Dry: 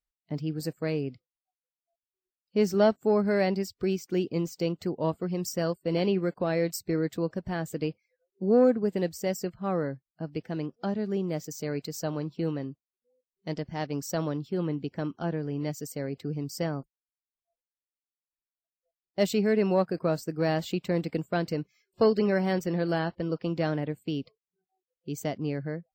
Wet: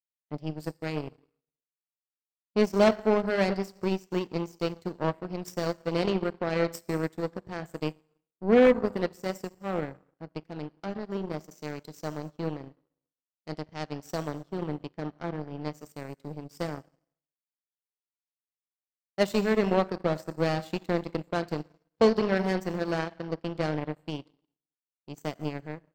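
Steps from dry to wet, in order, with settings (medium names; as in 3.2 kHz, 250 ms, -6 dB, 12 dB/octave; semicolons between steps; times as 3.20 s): plate-style reverb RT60 1.2 s, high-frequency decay 1×, DRR 9 dB; power-law waveshaper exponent 2; sine folder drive 5 dB, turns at -12 dBFS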